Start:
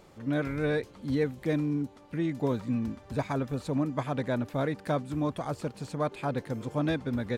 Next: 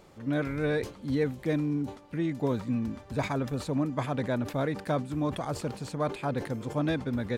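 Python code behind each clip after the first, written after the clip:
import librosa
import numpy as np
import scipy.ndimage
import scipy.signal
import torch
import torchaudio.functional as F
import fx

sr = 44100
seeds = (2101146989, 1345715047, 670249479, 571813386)

y = fx.sustainer(x, sr, db_per_s=140.0)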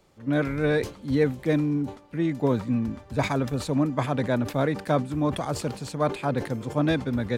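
y = fx.band_widen(x, sr, depth_pct=40)
y = F.gain(torch.from_numpy(y), 5.0).numpy()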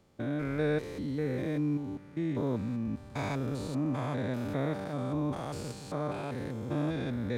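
y = fx.spec_steps(x, sr, hold_ms=200)
y = F.gain(torch.from_numpy(y), -5.0).numpy()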